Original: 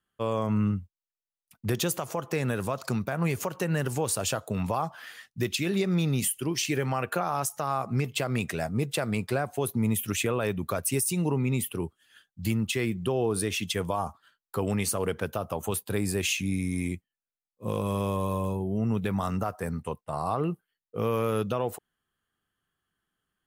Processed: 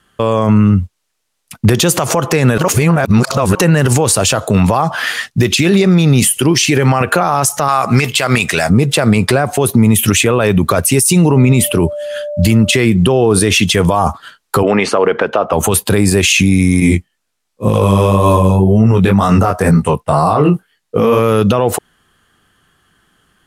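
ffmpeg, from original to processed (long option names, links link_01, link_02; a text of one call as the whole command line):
ffmpeg -i in.wav -filter_complex "[0:a]asettb=1/sr,asplit=3[link_01][link_02][link_03];[link_01]atrim=end=4.234[link_04];[link_02]atrim=start=4.23:end=7.01,asetpts=PTS-STARTPTS,afade=type=in:duration=0.004:curve=qsin,afade=type=out:start_time=2.776:duration=0.004:curve=qsin,acompressor=threshold=-35dB:ratio=2.5:attack=3.2:release=140:knee=1:detection=peak[link_05];[link_03]atrim=start=7.006[link_06];[link_04][link_05]acrossfade=duration=0.004:curve1=hsin:curve2=qsin[link_07];[link_07][link_06]acrossfade=duration=0.004:curve1=qsin:curve2=hsin,asettb=1/sr,asplit=3[link_08][link_09][link_10];[link_08]atrim=end=7.684[link_11];[link_09]atrim=start=7.68:end=8.7,asetpts=PTS-STARTPTS,afade=type=in:duration=0.004:curve=qsin,afade=type=out:start_time=1.016:duration=0.004:curve=qsin,tiltshelf=frequency=710:gain=-7.5[link_12];[link_10]atrim=start=8.696[link_13];[link_11][link_12]acrossfade=duration=0.004:curve1=hsin:curve2=qsin[link_14];[link_14][link_13]acrossfade=duration=0.004:curve1=qsin:curve2=hsin,asettb=1/sr,asplit=3[link_15][link_16][link_17];[link_15]atrim=end=11.314[link_18];[link_16]atrim=start=11.31:end=12.76,asetpts=PTS-STARTPTS,afade=type=in:duration=0.004:curve=qsin,afade=type=out:start_time=1.446:duration=0.004:curve=qsin,aeval=exprs='val(0)+0.00501*sin(2*PI*590*n/s)':channel_layout=same[link_19];[link_17]atrim=start=12.756[link_20];[link_18][link_19]acrossfade=duration=0.004:curve1=hsin:curve2=qsin[link_21];[link_21][link_20]acrossfade=duration=0.004:curve1=qsin:curve2=hsin,asplit=3[link_22][link_23][link_24];[link_22]afade=type=out:start_time=14.62:duration=0.02[link_25];[link_23]highpass=350,lowpass=2400,afade=type=in:start_time=14.62:duration=0.02,afade=type=out:start_time=15.52:duration=0.02[link_26];[link_24]afade=type=in:start_time=15.52:duration=0.02[link_27];[link_25][link_26][link_27]amix=inputs=3:normalize=0,asettb=1/sr,asplit=3[link_28][link_29][link_30];[link_28]atrim=end=16.804[link_31];[link_29]atrim=start=16.8:end=21.19,asetpts=PTS-STARTPTS,afade=type=in:duration=0.004:curve=qsin,afade=type=out:start_time=4.386:duration=0.004:curve=qsin,flanger=delay=17.5:depth=4.8:speed=2[link_32];[link_30]atrim=start=21.186[link_33];[link_31][link_32]acrossfade=duration=0.004:curve1=hsin:curve2=qsin[link_34];[link_34][link_33]acrossfade=duration=0.004:curve1=qsin:curve2=hsin,asplit=3[link_35][link_36][link_37];[link_35]atrim=end=2.582[link_38];[link_36]atrim=start=2.578:end=3.552,asetpts=PTS-STARTPTS,areverse[link_39];[link_37]atrim=start=3.548[link_40];[link_38][link_39]acrossfade=duration=0.004:curve1=hsin:curve2=hsin[link_41];[link_41][link_40]acrossfade=duration=0.004:curve1=hsin:curve2=hsin,lowpass=11000,acompressor=threshold=-28dB:ratio=6,alimiter=level_in=27.5dB:limit=-1dB:release=50:level=0:latency=1,volume=-1dB" out.wav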